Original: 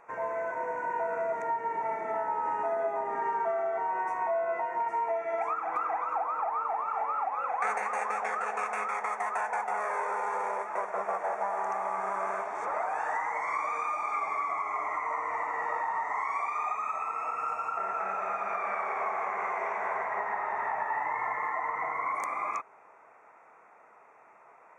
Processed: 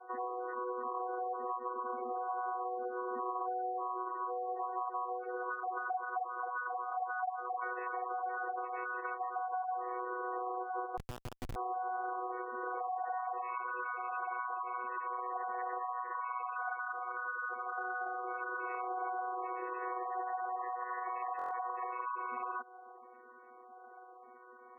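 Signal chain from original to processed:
channel vocoder with a chord as carrier bare fifth, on B3
gate on every frequency bin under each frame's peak −15 dB strong
high-shelf EQ 2,900 Hz −12 dB
downward compressor 3 to 1, threshold −42 dBFS, peak gain reduction 13.5 dB
0:10.97–0:11.56: comparator with hysteresis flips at −36.5 dBFS
buffer that repeats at 0:21.37, samples 1,024, times 5
level +4 dB

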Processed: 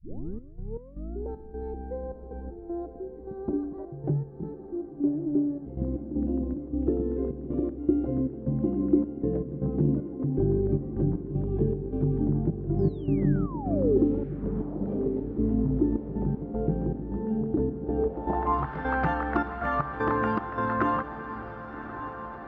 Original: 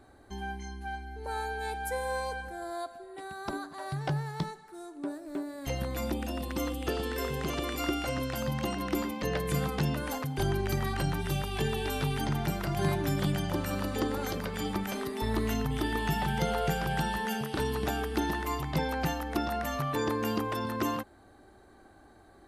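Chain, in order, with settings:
turntable start at the beginning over 1.28 s
in parallel at +2.5 dB: downward compressor, threshold −39 dBFS, peak gain reduction 15 dB
on the sum: gate pattern "xx.x.xx.x" 78 BPM −12 dB
sound drawn into the spectrogram fall, 0:12.78–0:13.98, 370–5,400 Hz −24 dBFS
on a send: feedback delay with all-pass diffusion 1,131 ms, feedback 59%, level −11.5 dB
on the sum: low-pass filter sweep 330 Hz → 1,400 Hz, 0:17.80–0:18.75

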